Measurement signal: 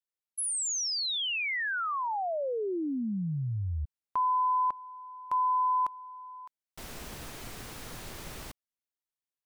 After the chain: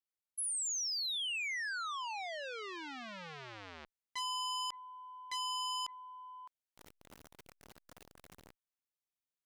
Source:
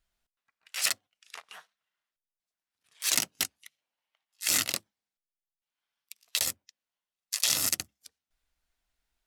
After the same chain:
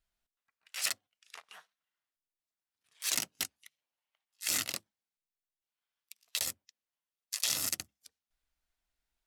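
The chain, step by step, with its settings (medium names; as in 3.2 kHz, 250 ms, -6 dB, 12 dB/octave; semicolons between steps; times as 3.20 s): transformer saturation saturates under 3.5 kHz; trim -5 dB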